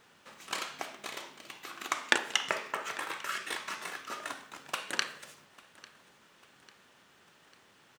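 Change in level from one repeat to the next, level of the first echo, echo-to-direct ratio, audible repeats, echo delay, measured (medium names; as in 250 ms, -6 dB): -6.0 dB, -22.0 dB, -21.0 dB, 3, 847 ms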